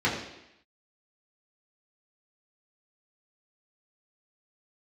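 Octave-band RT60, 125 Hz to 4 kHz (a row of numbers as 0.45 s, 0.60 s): 0.70 s, 0.85 s, 0.80 s, 0.85 s, 0.90 s, 0.90 s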